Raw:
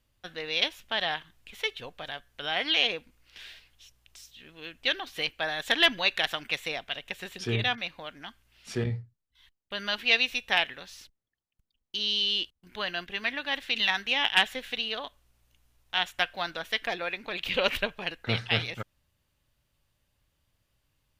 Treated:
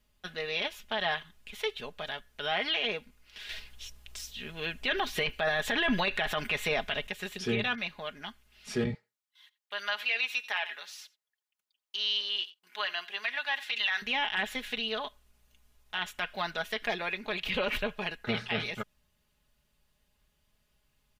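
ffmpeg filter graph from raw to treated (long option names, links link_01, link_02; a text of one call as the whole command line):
ffmpeg -i in.wav -filter_complex "[0:a]asettb=1/sr,asplit=3[link_01][link_02][link_03];[link_01]atrim=end=3.494[link_04];[link_02]atrim=start=3.49:end=7.07,asetpts=PTS-STARTPTS,afade=type=in:duration=0.004:curve=qsin,afade=type=out:start_time=3.576:duration=0.004:curve=qsin,acontrast=89,lowshelf=frequency=120:gain=6[link_05];[link_03]atrim=start=7.066[link_06];[link_04][link_05]acrossfade=duration=0.004:curve1=hsin:curve2=qsin[link_07];[link_07][link_06]acrossfade=duration=0.004:curve1=qsin:curve2=hsin,asettb=1/sr,asplit=3[link_08][link_09][link_10];[link_08]atrim=end=8.944[link_11];[link_09]atrim=start=8.94:end=14.02,asetpts=PTS-STARTPTS,afade=type=in:duration=0.004:curve=qsin,afade=type=out:start_time=5.076:duration=0.004:curve=qsin,highpass=800,aecho=1:1:87:0.0841,atrim=end_sample=224028[link_12];[link_10]atrim=start=14.016[link_13];[link_11][link_12]acrossfade=duration=0.004:curve1=hsin:curve2=qsin[link_14];[link_14][link_13]acrossfade=duration=0.004:curve1=qsin:curve2=hsin,acrossover=split=2700[link_15][link_16];[link_16]acompressor=threshold=-37dB:ratio=4:attack=1:release=60[link_17];[link_15][link_17]amix=inputs=2:normalize=0,aecho=1:1:4.8:0.64,alimiter=limit=-19.5dB:level=0:latency=1:release=16" out.wav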